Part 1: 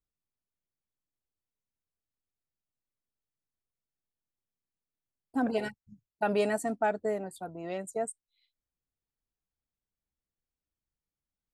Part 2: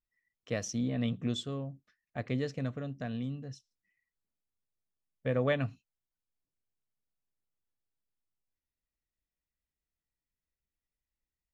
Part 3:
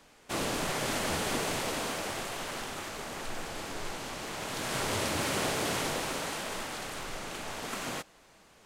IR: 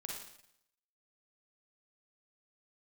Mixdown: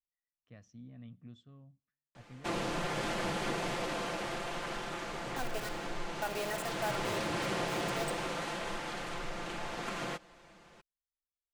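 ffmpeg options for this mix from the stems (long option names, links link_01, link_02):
-filter_complex "[0:a]highpass=600,acrusher=bits=5:mix=0:aa=0.000001,volume=-4dB,asplit=2[link_01][link_02];[link_02]volume=-7.5dB[link_03];[1:a]lowpass=frequency=1100:poles=1,equalizer=frequency=460:width_type=o:width=1.2:gain=-11,volume=-15.5dB,asplit=2[link_04][link_05];[link_05]volume=-24dB[link_06];[2:a]aemphasis=mode=reproduction:type=50fm,aecho=1:1:5.8:0.59,adelay=2150,volume=0.5dB[link_07];[3:a]atrim=start_sample=2205[link_08];[link_03][link_06]amix=inputs=2:normalize=0[link_09];[link_09][link_08]afir=irnorm=-1:irlink=0[link_10];[link_01][link_04][link_07][link_10]amix=inputs=4:normalize=0,acompressor=threshold=-38dB:ratio=1.5"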